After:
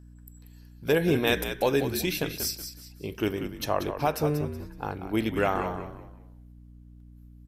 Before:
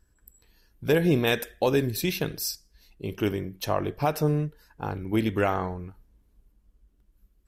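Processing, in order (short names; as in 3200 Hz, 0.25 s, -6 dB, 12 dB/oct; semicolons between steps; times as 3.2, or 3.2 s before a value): low shelf 190 Hz -7 dB; on a send: frequency-shifting echo 0.186 s, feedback 31%, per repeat -58 Hz, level -9 dB; on the sum: hum 60 Hz, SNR 19 dB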